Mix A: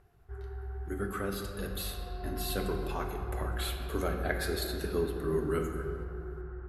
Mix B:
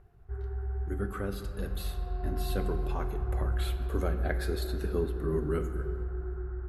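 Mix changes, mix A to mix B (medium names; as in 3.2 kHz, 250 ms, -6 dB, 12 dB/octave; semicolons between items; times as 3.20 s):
speech: send -6.5 dB; master: add tilt EQ -1.5 dB/octave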